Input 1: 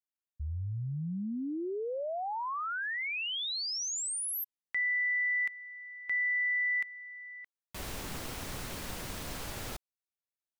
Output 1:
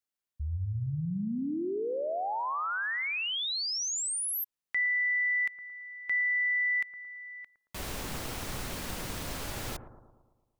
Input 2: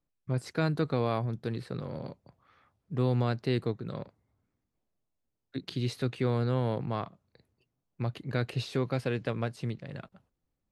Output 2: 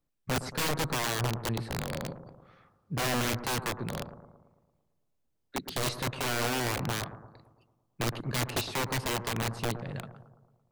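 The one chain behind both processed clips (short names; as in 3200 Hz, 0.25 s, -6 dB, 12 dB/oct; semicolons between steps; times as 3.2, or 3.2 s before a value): wrapped overs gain 27 dB; analogue delay 0.112 s, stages 1024, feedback 56%, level -11 dB; gain +2.5 dB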